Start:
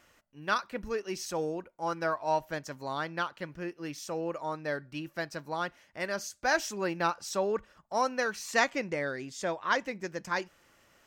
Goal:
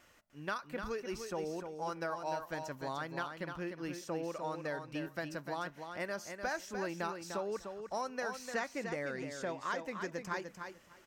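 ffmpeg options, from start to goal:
-filter_complex "[0:a]acrossover=split=2300|7200[a][b][c];[a]acompressor=threshold=-35dB:ratio=4[d];[b]acompressor=threshold=-53dB:ratio=4[e];[c]acompressor=threshold=-57dB:ratio=4[f];[d][e][f]amix=inputs=3:normalize=0,asplit=2[g][h];[h]aecho=0:1:299|598|897:0.447|0.0715|0.0114[i];[g][i]amix=inputs=2:normalize=0,volume=-1dB"

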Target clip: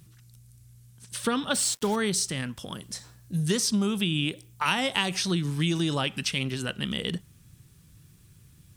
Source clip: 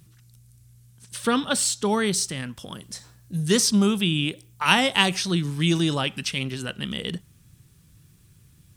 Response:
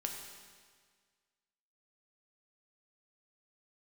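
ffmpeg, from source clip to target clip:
-filter_complex "[0:a]acompressor=threshold=-22dB:ratio=6,asettb=1/sr,asplit=3[a][b][c];[a]atrim=end=1.544[d];[b]atrim=start=1.54:end=1.96,asetpts=PTS-STARTPTS,afade=t=in:d=0.004:c=qsin,afade=t=out:st=0.416:d=0.004:c=qsin,acrusher=bits=5:mix=0:aa=0.5[e];[c]atrim=start=1.956[f];[d][e]acrossfade=d=0.004:c1=hsin:c2=qsin[g];[g][f]acrossfade=d=0.004:c1=qsin:c2=hsin"

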